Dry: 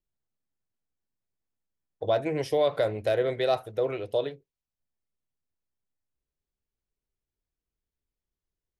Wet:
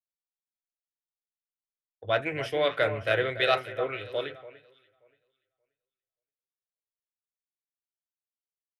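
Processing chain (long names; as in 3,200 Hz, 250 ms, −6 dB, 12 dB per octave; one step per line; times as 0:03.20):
flat-topped bell 2,000 Hz +12.5 dB
delay that swaps between a low-pass and a high-pass 289 ms, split 1,900 Hz, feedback 62%, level −8 dB
multiband upward and downward expander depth 100%
level −4.5 dB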